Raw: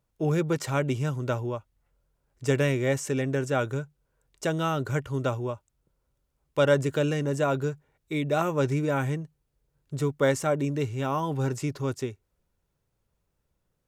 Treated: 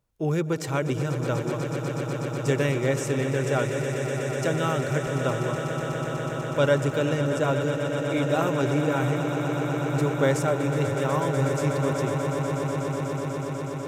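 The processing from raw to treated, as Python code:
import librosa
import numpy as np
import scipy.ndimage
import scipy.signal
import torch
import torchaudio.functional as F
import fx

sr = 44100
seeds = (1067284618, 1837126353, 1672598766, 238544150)

y = fx.echo_swell(x, sr, ms=123, loudest=8, wet_db=-11.0)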